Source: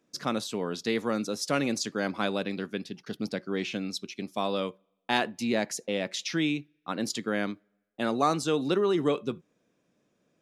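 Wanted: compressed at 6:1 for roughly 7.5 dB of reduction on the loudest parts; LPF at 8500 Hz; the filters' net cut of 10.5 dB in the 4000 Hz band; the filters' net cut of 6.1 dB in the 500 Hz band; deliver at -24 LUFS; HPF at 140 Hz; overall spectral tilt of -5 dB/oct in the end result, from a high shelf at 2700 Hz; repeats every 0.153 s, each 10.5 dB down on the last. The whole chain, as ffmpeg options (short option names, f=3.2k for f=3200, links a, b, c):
-af "highpass=140,lowpass=8.5k,equalizer=f=500:t=o:g=-7.5,highshelf=f=2.7k:g=-5,equalizer=f=4k:t=o:g=-9,acompressor=threshold=-32dB:ratio=6,aecho=1:1:153|306|459:0.299|0.0896|0.0269,volume=14dB"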